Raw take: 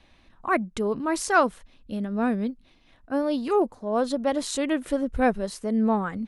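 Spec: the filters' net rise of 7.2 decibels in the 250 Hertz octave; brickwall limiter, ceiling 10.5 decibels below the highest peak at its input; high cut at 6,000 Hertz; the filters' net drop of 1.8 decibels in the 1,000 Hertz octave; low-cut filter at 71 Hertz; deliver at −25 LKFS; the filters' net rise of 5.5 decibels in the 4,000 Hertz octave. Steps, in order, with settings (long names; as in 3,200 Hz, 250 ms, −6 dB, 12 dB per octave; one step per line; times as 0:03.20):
high-pass filter 71 Hz
low-pass filter 6,000 Hz
parametric band 250 Hz +8.5 dB
parametric band 1,000 Hz −3.5 dB
parametric band 4,000 Hz +7.5 dB
level +0.5 dB
brickwall limiter −16.5 dBFS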